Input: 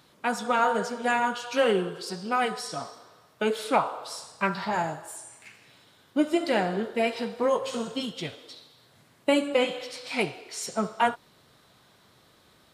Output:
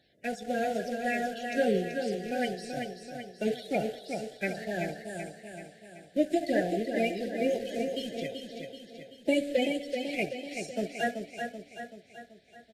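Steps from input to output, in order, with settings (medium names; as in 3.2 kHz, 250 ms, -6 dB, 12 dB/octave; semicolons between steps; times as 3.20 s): coarse spectral quantiser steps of 30 dB; treble shelf 4.6 kHz -9 dB; in parallel at -8 dB: small samples zeroed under -30.5 dBFS; on the sum: elliptic band-stop 710–1700 Hz, stop band 60 dB; on a send: feedback delay 382 ms, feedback 52%, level -6 dB; on the sum: trim -4.5 dB; Vorbis 64 kbps 32 kHz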